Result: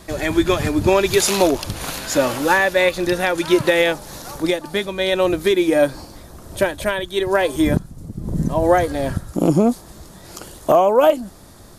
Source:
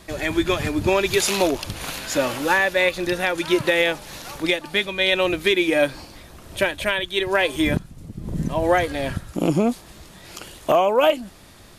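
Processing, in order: bell 2600 Hz -5 dB 1.2 oct, from 3.94 s -11.5 dB; gain +4.5 dB

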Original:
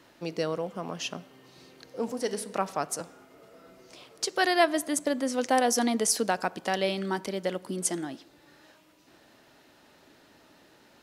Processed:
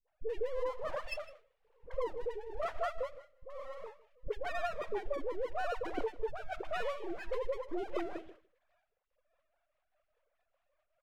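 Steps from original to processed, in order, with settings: sine-wave speech; steep low-pass 2800 Hz; de-hum 321.5 Hz, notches 28; gate with hold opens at -46 dBFS; bell 500 Hz +8.5 dB 1.1 oct; compressor 12:1, threshold -34 dBFS, peak gain reduction 24.5 dB; half-wave rectifier; rotary speaker horn 1 Hz, later 5 Hz, at 8.46; dispersion highs, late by 79 ms, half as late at 490 Hz; on a send: echo 0.156 s -19 dB; on the sum: gain +7.5 dB

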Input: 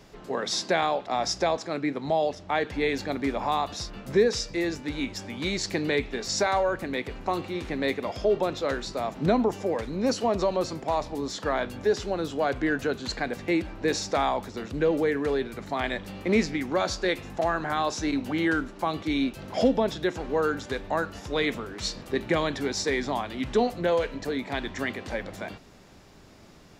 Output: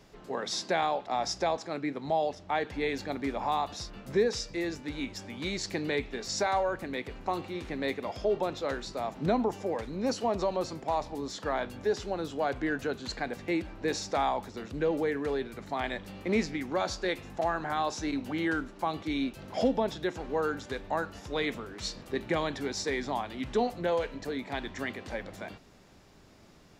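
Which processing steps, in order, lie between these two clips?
dynamic EQ 830 Hz, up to +4 dB, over -39 dBFS, Q 3.8; gain -5 dB

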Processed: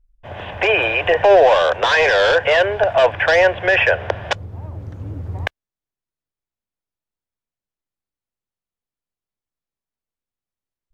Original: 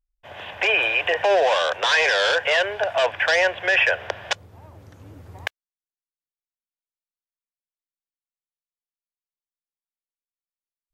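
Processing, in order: tilt -3 dB/oct; gain +5.5 dB

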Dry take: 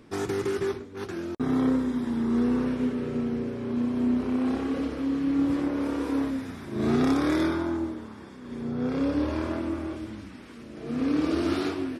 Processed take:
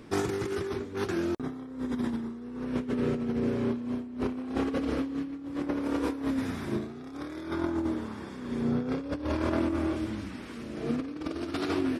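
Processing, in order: negative-ratio compressor -30 dBFS, ratio -0.5

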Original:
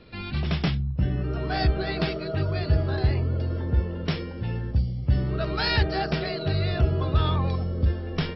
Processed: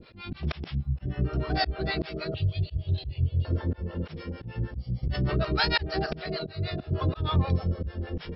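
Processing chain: 2.34–3.45 EQ curve 120 Hz 0 dB, 270 Hz -13 dB, 510 Hz -12 dB, 1500 Hz -29 dB, 3200 Hz +6 dB, 5100 Hz -11 dB; auto swell 0.205 s; 6.44–6.91 resonator 71 Hz, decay 1.1 s, harmonics all, mix 40%; harmonic tremolo 6.5 Hz, depth 100%, crossover 520 Hz; 5.03–5.43 fast leveller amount 70%; gain +4.5 dB

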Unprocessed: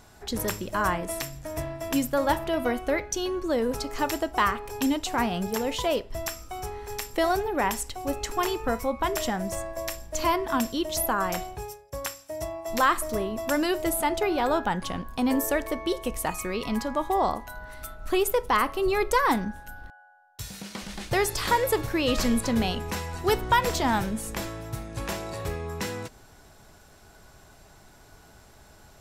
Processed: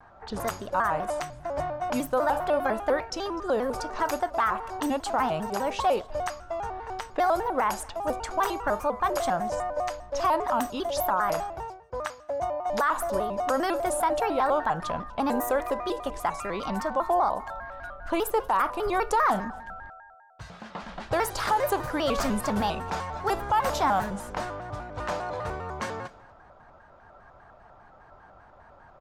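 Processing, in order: low-pass opened by the level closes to 1900 Hz, open at -23 dBFS; band shelf 940 Hz +10 dB; limiter -11 dBFS, peak gain reduction 9.5 dB; echo 0.246 s -23 dB; shaped vibrato square 5 Hz, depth 160 cents; gain -4.5 dB

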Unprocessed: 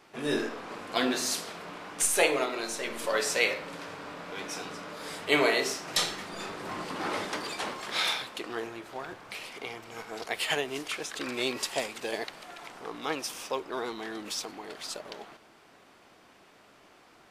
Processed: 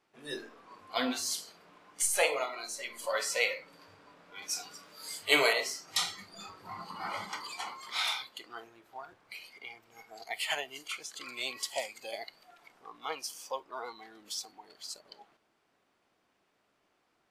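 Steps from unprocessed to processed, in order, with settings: spectral noise reduction 14 dB; 4.42–5.53 high shelf 3000 Hz +11 dB; gain -3 dB

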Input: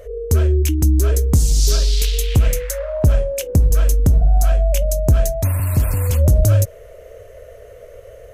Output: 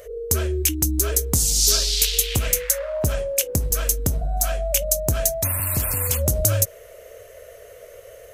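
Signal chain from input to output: tilt +2.5 dB/oct; gain -1 dB

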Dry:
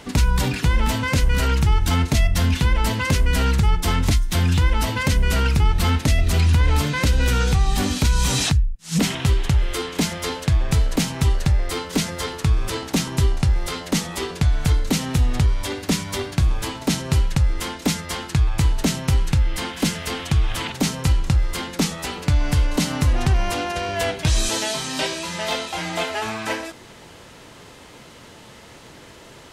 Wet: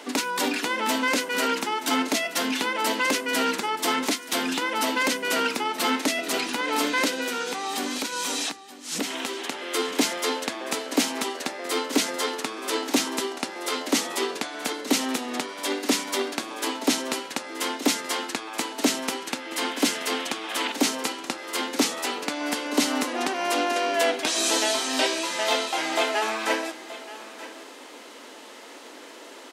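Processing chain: elliptic high-pass 260 Hz, stop band 60 dB; 7.13–9.52 compressor 4:1, threshold -28 dBFS, peak gain reduction 9 dB; echo 0.927 s -16 dB; gain +1.5 dB

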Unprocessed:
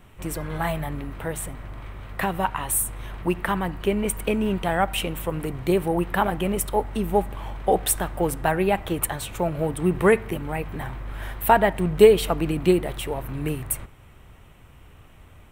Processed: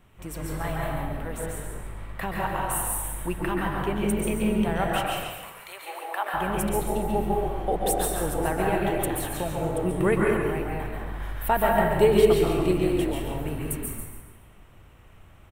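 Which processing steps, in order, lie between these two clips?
4.87–6.33 HPF 1400 Hz -> 550 Hz 24 dB/oct; frequency-shifting echo 0.141 s, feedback 35%, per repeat -42 Hz, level -6.5 dB; plate-style reverb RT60 1.2 s, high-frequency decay 0.6×, pre-delay 0.115 s, DRR -1.5 dB; gain -7 dB

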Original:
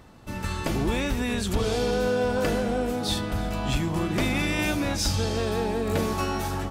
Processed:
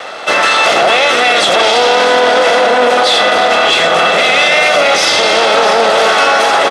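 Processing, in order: minimum comb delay 1.5 ms; tilt +2 dB/oct; overdrive pedal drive 19 dB, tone 1100 Hz, clips at -14.5 dBFS; speaker cabinet 390–9100 Hz, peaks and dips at 980 Hz -4 dB, 3400 Hz +5 dB, 7400 Hz -4 dB; echo 0.661 s -8.5 dB; reverb RT60 2.5 s, pre-delay 3 ms, DRR 12.5 dB; maximiser +25 dB; gain -1 dB

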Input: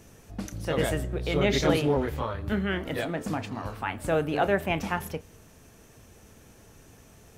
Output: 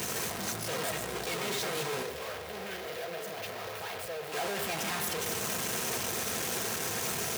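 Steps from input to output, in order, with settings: infinite clipping; 2.02–4.32 graphic EQ 250/500/1000/8000 Hz -12/+9/-4/-7 dB; limiter -30 dBFS, peak gain reduction 8 dB; HPF 120 Hz 12 dB/oct; low shelf 310 Hz -10 dB; notch comb 290 Hz; echo with dull and thin repeats by turns 0.117 s, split 2300 Hz, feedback 76%, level -9 dB

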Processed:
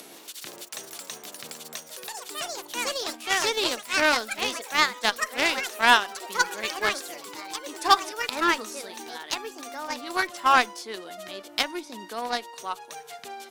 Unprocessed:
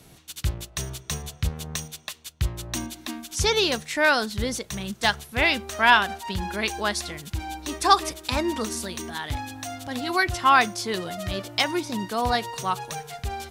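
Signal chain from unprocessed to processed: HPF 260 Hz 24 dB/oct; echoes that change speed 0.12 s, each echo +4 st, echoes 3; added harmonics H 7 -21 dB, 8 -43 dB, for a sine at -1.5 dBFS; upward compressor, threshold -33 dBFS

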